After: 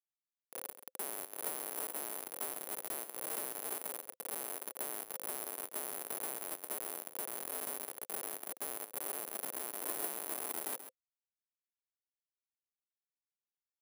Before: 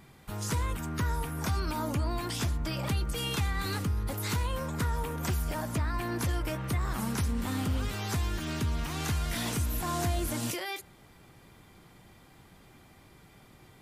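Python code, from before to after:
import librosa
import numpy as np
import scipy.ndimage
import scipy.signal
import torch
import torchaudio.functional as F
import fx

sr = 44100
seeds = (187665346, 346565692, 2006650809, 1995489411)

p1 = fx.fade_in_head(x, sr, length_s=1.19)
p2 = fx.echo_tape(p1, sr, ms=346, feedback_pct=30, wet_db=-5, lp_hz=1400.0, drive_db=21.0, wow_cents=8)
p3 = fx.spec_gate(p2, sr, threshold_db=-20, keep='strong')
p4 = fx.rider(p3, sr, range_db=4, speed_s=2.0)
p5 = fx.schmitt(p4, sr, flips_db=-27.0)
p6 = fx.ladder_highpass(p5, sr, hz=360.0, resonance_pct=25)
p7 = fx.high_shelf(p6, sr, hz=5000.0, db=-4.0)
p8 = p7 + fx.echo_single(p7, sr, ms=134, db=-11.5, dry=0)
p9 = (np.kron(p8[::4], np.eye(4)[0]) * 4)[:len(p8)]
p10 = fx.notch(p9, sr, hz=520.0, q=12.0)
y = F.gain(torch.from_numpy(p10), 1.0).numpy()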